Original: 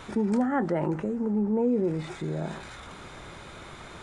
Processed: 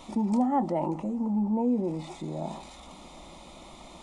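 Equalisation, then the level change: bell 410 Hz +7 dB 0.33 oct; dynamic EQ 890 Hz, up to +5 dB, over -46 dBFS, Q 2.4; fixed phaser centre 420 Hz, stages 6; 0.0 dB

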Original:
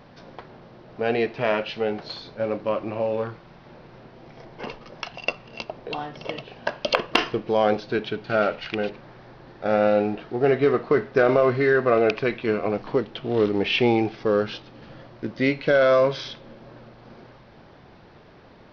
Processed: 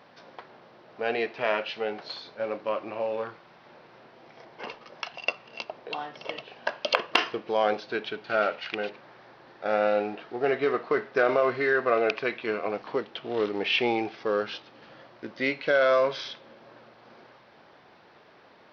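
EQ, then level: HPF 740 Hz 6 dB/oct; high shelf 4400 Hz -4.5 dB; 0.0 dB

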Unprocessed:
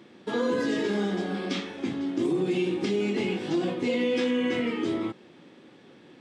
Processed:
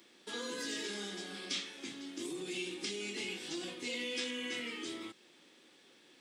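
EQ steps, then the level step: pre-emphasis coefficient 0.97; bell 330 Hz +6.5 dB 1.8 oct; dynamic EQ 670 Hz, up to -5 dB, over -59 dBFS, Q 0.74; +5.0 dB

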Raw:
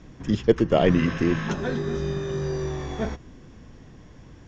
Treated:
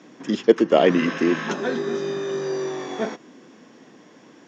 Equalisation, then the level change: HPF 230 Hz 24 dB/oct; +4.0 dB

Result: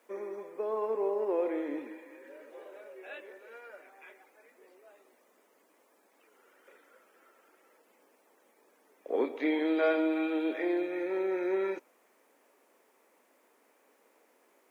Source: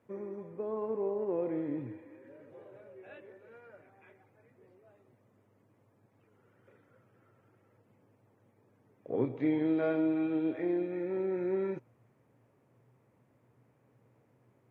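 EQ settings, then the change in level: Bessel high-pass 460 Hz, order 8; high shelf 2800 Hz +10.5 dB; +6.0 dB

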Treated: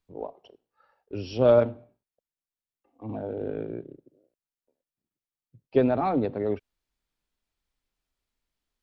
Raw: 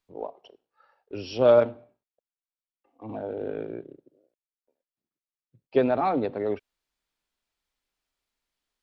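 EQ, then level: low shelf 260 Hz +10.5 dB; -3.0 dB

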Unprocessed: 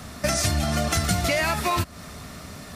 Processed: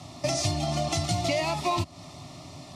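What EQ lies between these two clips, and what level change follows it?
HPF 55 Hz; LPF 5800 Hz 12 dB/oct; fixed phaser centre 310 Hz, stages 8; 0.0 dB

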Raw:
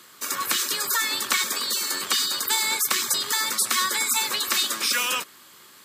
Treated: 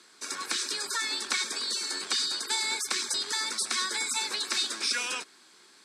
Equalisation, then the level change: speaker cabinet 280–8400 Hz, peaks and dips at 560 Hz -8 dB, 950 Hz -4 dB, 1900 Hz -5 dB, 3000 Hz -9 dB, 7000 Hz -6 dB; bell 1200 Hz -10.5 dB 0.22 oct; -2.0 dB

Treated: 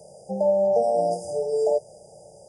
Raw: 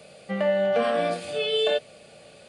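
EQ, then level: brick-wall FIR band-stop 930–4800 Hz; bell 250 Hz -15 dB 0.47 oct; +3.5 dB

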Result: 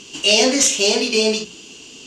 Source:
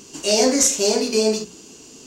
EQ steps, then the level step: LPF 9800 Hz 12 dB/oct; bell 3000 Hz +14.5 dB 0.77 oct; 0.0 dB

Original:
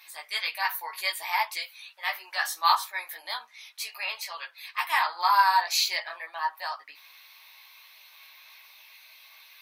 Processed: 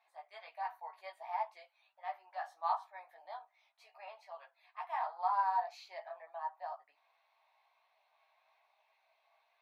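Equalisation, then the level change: band-pass 700 Hz, Q 6.2; +1.0 dB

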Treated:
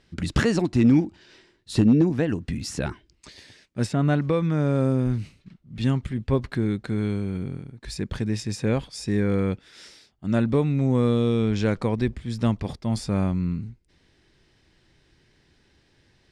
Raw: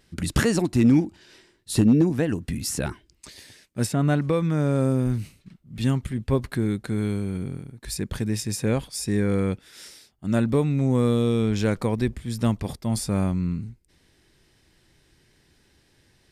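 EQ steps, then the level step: LPF 5600 Hz 12 dB/oct; 0.0 dB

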